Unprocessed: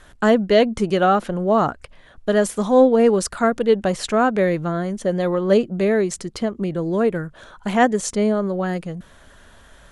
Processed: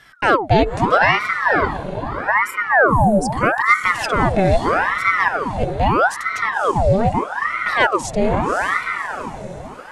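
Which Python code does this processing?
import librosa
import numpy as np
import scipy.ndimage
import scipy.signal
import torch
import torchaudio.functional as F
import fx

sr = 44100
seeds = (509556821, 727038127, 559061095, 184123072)

p1 = fx.spec_expand(x, sr, power=3.2, at=(1.33, 3.31))
p2 = fx.small_body(p1, sr, hz=(330.0, 2400.0, 3800.0), ring_ms=45, db=15)
p3 = fx.over_compress(p2, sr, threshold_db=-20.0, ratio=-1.0, at=(5.28, 5.7))
p4 = p3 + fx.echo_diffused(p3, sr, ms=562, feedback_pct=43, wet_db=-7.5, dry=0)
y = fx.ring_lfo(p4, sr, carrier_hz=950.0, swing_pct=80, hz=0.79)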